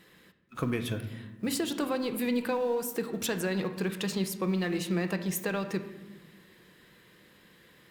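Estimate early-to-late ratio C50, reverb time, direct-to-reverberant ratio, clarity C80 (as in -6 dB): 10.5 dB, 1.2 s, 7.0 dB, 12.5 dB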